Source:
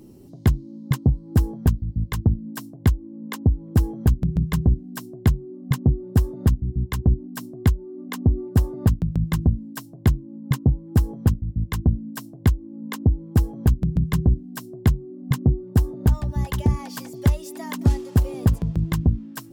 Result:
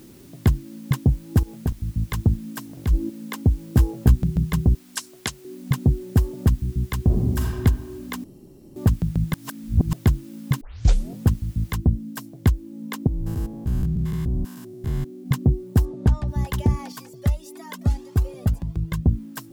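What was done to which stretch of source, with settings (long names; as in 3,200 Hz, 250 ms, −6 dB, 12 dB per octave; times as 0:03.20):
0:01.39–0:01.80: output level in coarse steps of 20 dB
0:02.65–0:03.10: transient designer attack −9 dB, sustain +12 dB
0:03.76–0:04.24: double-tracking delay 16 ms −4 dB
0:04.75–0:05.45: meter weighting curve ITU-R 468
0:07.04–0:07.60: thrown reverb, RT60 1.6 s, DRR −2 dB
0:08.24–0:08.76: fill with room tone
0:09.34–0:09.93: reverse
0:10.61: tape start 0.60 s
0:11.76: noise floor change −55 dB −66 dB
0:13.07–0:15.26: spectrum averaged block by block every 200 ms
0:15.85–0:16.28: high-frequency loss of the air 53 metres
0:16.92–0:19.06: flanger whose copies keep moving one way rising 1.7 Hz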